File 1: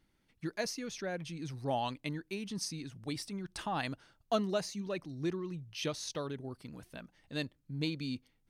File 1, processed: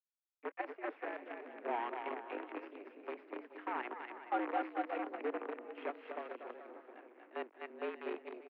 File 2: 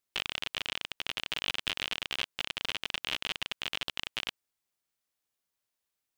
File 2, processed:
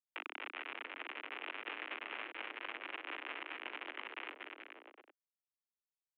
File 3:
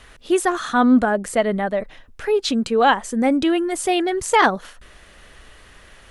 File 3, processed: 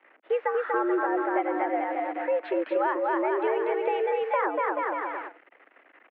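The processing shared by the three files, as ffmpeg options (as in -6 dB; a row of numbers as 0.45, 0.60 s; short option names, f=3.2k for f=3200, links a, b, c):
-filter_complex "[0:a]aecho=1:1:240|432|585.6|708.5|806.8:0.631|0.398|0.251|0.158|0.1,acrusher=bits=6:dc=4:mix=0:aa=0.000001,highpass=f=180:t=q:w=0.5412,highpass=f=180:t=q:w=1.307,lowpass=f=2.3k:t=q:w=0.5176,lowpass=f=2.3k:t=q:w=0.7071,lowpass=f=2.3k:t=q:w=1.932,afreqshift=110,acrossover=split=450|1500[a][b][c];[a]acompressor=threshold=-27dB:ratio=4[d];[b]acompressor=threshold=-22dB:ratio=4[e];[c]acompressor=threshold=-35dB:ratio=4[f];[d][e][f]amix=inputs=3:normalize=0,volume=-4.5dB"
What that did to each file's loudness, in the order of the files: -4.5, -10.5, -8.0 LU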